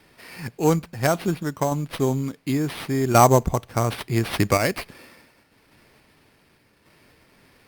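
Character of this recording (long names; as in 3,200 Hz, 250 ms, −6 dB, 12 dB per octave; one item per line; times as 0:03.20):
sample-and-hold tremolo
aliases and images of a low sample rate 7,000 Hz, jitter 0%
Opus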